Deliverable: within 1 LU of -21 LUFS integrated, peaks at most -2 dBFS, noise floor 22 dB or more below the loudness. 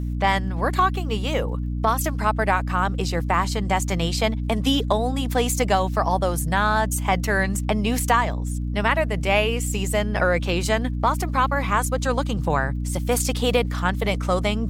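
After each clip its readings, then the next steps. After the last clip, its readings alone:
ticks 28/s; hum 60 Hz; harmonics up to 300 Hz; hum level -24 dBFS; loudness -22.5 LUFS; peak -5.0 dBFS; loudness target -21.0 LUFS
-> de-click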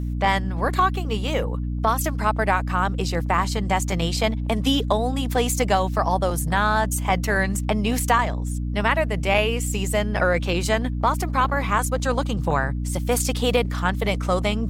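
ticks 0.41/s; hum 60 Hz; harmonics up to 300 Hz; hum level -24 dBFS
-> notches 60/120/180/240/300 Hz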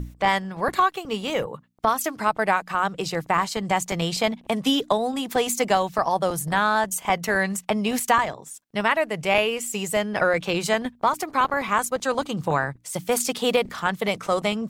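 hum none; loudness -24.0 LUFS; peak -5.5 dBFS; loudness target -21.0 LUFS
-> gain +3 dB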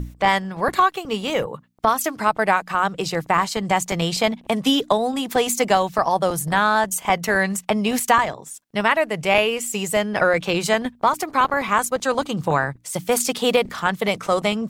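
loudness -21.0 LUFS; peak -2.5 dBFS; noise floor -50 dBFS

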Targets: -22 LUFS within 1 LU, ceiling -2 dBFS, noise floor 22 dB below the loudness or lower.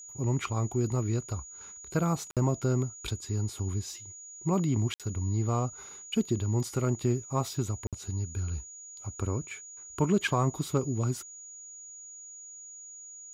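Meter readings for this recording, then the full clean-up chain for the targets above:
dropouts 3; longest dropout 57 ms; steady tone 6800 Hz; tone level -44 dBFS; loudness -31.0 LUFS; peak -15.0 dBFS; loudness target -22.0 LUFS
-> interpolate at 2.31/4.94/7.87, 57 ms; notch 6800 Hz, Q 30; gain +9 dB

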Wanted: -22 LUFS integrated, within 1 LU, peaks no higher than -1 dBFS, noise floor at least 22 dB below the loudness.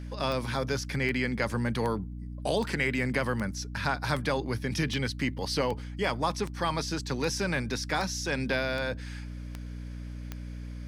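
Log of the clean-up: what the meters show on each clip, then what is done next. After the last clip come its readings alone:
clicks 14; hum 60 Hz; harmonics up to 300 Hz; hum level -36 dBFS; loudness -30.5 LUFS; peak -13.5 dBFS; loudness target -22.0 LUFS
-> de-click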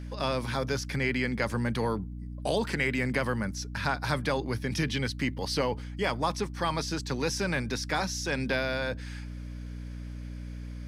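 clicks 0; hum 60 Hz; harmonics up to 300 Hz; hum level -36 dBFS
-> de-hum 60 Hz, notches 5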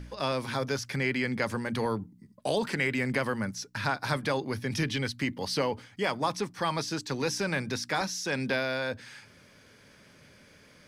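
hum none; loudness -30.5 LUFS; peak -13.5 dBFS; loudness target -22.0 LUFS
-> gain +8.5 dB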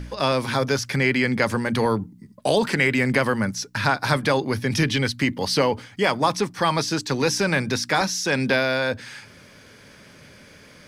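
loudness -22.0 LUFS; peak -5.0 dBFS; noise floor -49 dBFS

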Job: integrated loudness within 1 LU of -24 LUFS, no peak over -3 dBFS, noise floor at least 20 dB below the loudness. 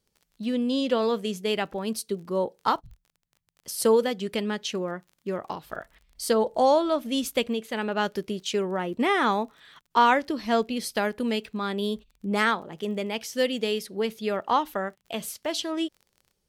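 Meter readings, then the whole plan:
ticks 28/s; loudness -27.0 LUFS; peak -8.5 dBFS; loudness target -24.0 LUFS
-> de-click; gain +3 dB

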